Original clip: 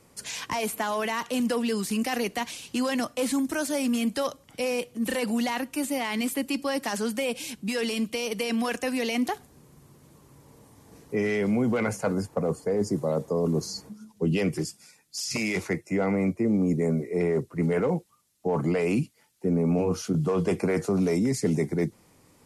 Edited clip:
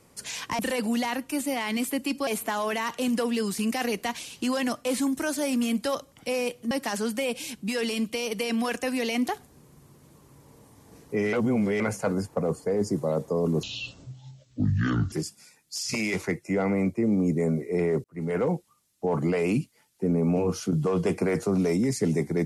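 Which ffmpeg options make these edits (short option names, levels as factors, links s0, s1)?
-filter_complex "[0:a]asplit=9[s0][s1][s2][s3][s4][s5][s6][s7][s8];[s0]atrim=end=0.592[s9];[s1]atrim=start=5.028:end=6.712[s10];[s2]atrim=start=0.588:end=5.032[s11];[s3]atrim=start=6.708:end=11.332[s12];[s4]atrim=start=11.328:end=11.802,asetpts=PTS-STARTPTS,areverse[s13];[s5]atrim=start=11.798:end=13.634[s14];[s6]atrim=start=13.63:end=14.54,asetpts=PTS-STARTPTS,asetrate=26901,aresample=44100[s15];[s7]atrim=start=14.536:end=17.46,asetpts=PTS-STARTPTS,afade=t=out:st=2.92:d=0.004:c=hsin[s16];[s8]atrim=start=17.46,asetpts=PTS-STARTPTS,afade=t=in:d=0.39[s17];[s9][s10]acrossfade=d=0.004:c1=hsin:c2=hsin[s18];[s18][s11]acrossfade=d=0.004:c1=hsin:c2=hsin[s19];[s19][s12]acrossfade=d=0.004:c1=hsin:c2=hsin[s20];[s20][s13]acrossfade=d=0.004:c1=hsin:c2=hsin[s21];[s21][s14]acrossfade=d=0.004:c1=hsin:c2=hsin[s22];[s22][s15]acrossfade=d=0.004:c1=hsin:c2=hsin[s23];[s16][s17]concat=n=2:v=0:a=1[s24];[s23][s24]acrossfade=d=0.004:c1=hsin:c2=hsin"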